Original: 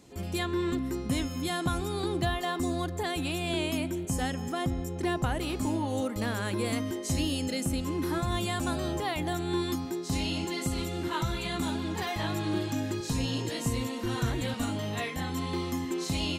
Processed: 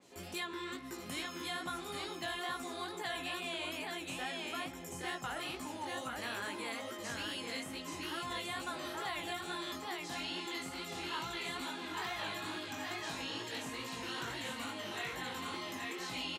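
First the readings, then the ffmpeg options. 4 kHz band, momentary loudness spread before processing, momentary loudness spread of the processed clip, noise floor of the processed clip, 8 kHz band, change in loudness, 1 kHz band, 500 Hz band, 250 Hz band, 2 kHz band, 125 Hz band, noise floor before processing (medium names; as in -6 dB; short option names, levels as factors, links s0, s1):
-4.0 dB, 3 LU, 3 LU, -46 dBFS, -8.0 dB, -8.5 dB, -6.0 dB, -11.0 dB, -14.5 dB, -2.5 dB, -21.0 dB, -36 dBFS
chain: -filter_complex "[0:a]highpass=f=570:p=1,aecho=1:1:827:0.631,flanger=delay=16:depth=6.4:speed=2.3,acrossover=split=970|4100[s0][s1][s2];[s0]acompressor=threshold=0.00501:ratio=4[s3];[s1]acompressor=threshold=0.01:ratio=4[s4];[s2]acompressor=threshold=0.00355:ratio=4[s5];[s3][s4][s5]amix=inputs=3:normalize=0,adynamicequalizer=threshold=0.00224:dfrequency=4000:dqfactor=0.7:tfrequency=4000:tqfactor=0.7:attack=5:release=100:ratio=0.375:range=2:mode=cutabove:tftype=highshelf,volume=1.19"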